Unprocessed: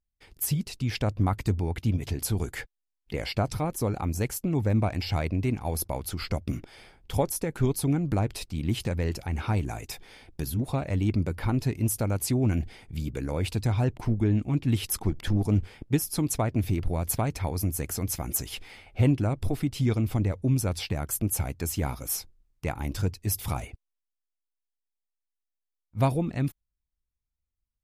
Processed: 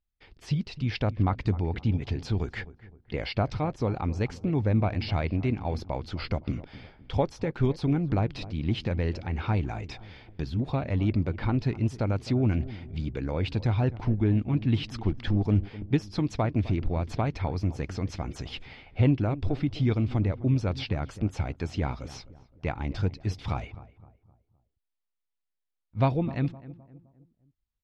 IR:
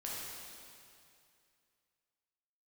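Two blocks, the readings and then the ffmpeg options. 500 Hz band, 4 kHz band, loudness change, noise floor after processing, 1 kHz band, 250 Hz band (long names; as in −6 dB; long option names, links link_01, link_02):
0.0 dB, −2.0 dB, −0.5 dB, −83 dBFS, 0.0 dB, 0.0 dB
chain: -filter_complex "[0:a]lowpass=frequency=4500:width=0.5412,lowpass=frequency=4500:width=1.3066,asplit=2[link_01][link_02];[link_02]adelay=258,lowpass=frequency=1200:poles=1,volume=-16dB,asplit=2[link_03][link_04];[link_04]adelay=258,lowpass=frequency=1200:poles=1,volume=0.43,asplit=2[link_05][link_06];[link_06]adelay=258,lowpass=frequency=1200:poles=1,volume=0.43,asplit=2[link_07][link_08];[link_08]adelay=258,lowpass=frequency=1200:poles=1,volume=0.43[link_09];[link_01][link_03][link_05][link_07][link_09]amix=inputs=5:normalize=0"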